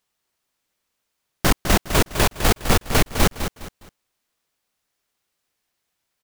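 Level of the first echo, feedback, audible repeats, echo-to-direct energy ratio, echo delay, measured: -9.0 dB, 30%, 3, -8.5 dB, 0.205 s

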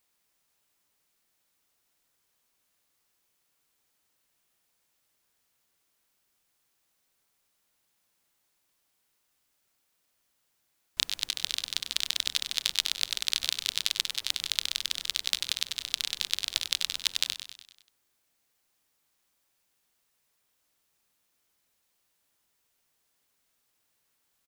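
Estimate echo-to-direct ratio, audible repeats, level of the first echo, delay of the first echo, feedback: -8.5 dB, 5, -10.0 dB, 97 ms, 55%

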